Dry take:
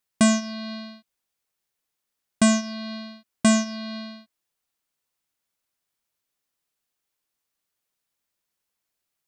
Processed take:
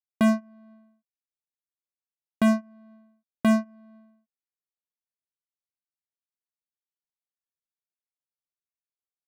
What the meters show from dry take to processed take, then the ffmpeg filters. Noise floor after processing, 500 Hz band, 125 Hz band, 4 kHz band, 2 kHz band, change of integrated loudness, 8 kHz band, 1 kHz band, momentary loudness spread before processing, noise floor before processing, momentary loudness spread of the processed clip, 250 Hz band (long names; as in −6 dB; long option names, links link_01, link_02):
below −85 dBFS, −2.0 dB, −2.5 dB, −13.0 dB, −5.0 dB, −1.0 dB, −18.5 dB, −2.5 dB, 18 LU, −82 dBFS, 5 LU, −2.0 dB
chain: -af "lowpass=1800,aeval=exprs='0.237*(cos(1*acos(clip(val(0)/0.237,-1,1)))-cos(1*PI/2))+0.0106*(cos(5*acos(clip(val(0)/0.237,-1,1)))-cos(5*PI/2))+0.0376*(cos(7*acos(clip(val(0)/0.237,-1,1)))-cos(7*PI/2))':channel_layout=same,adynamicsmooth=sensitivity=4:basefreq=1200,volume=-2dB"